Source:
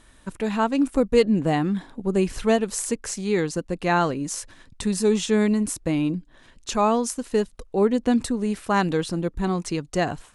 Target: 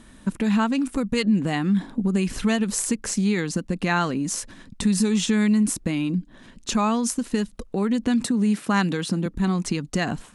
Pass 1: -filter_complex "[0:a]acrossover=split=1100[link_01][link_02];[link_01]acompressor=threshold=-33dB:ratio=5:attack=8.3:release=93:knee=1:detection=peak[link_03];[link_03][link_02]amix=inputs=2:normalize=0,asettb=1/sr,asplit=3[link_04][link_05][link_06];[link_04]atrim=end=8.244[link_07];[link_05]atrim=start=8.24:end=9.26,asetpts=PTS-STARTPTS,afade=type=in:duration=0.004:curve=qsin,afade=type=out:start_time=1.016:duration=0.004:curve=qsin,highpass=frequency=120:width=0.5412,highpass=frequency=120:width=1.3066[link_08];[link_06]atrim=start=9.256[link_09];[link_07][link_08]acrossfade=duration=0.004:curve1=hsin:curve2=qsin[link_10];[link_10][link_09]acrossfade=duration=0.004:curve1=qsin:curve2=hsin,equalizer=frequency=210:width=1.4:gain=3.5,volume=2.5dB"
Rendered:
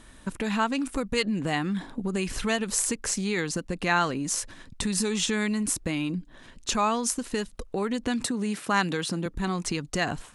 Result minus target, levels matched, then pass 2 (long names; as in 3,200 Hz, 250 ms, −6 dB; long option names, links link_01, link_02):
250 Hz band −3.5 dB
-filter_complex "[0:a]acrossover=split=1100[link_01][link_02];[link_01]acompressor=threshold=-33dB:ratio=5:attack=8.3:release=93:knee=1:detection=peak[link_03];[link_03][link_02]amix=inputs=2:normalize=0,asettb=1/sr,asplit=3[link_04][link_05][link_06];[link_04]atrim=end=8.244[link_07];[link_05]atrim=start=8.24:end=9.26,asetpts=PTS-STARTPTS,afade=type=in:duration=0.004:curve=qsin,afade=type=out:start_time=1.016:duration=0.004:curve=qsin,highpass=frequency=120:width=0.5412,highpass=frequency=120:width=1.3066[link_08];[link_06]atrim=start=9.256[link_09];[link_07][link_08]acrossfade=duration=0.004:curve1=hsin:curve2=qsin[link_10];[link_10][link_09]acrossfade=duration=0.004:curve1=qsin:curve2=hsin,equalizer=frequency=210:width=1.4:gain=12.5,volume=2.5dB"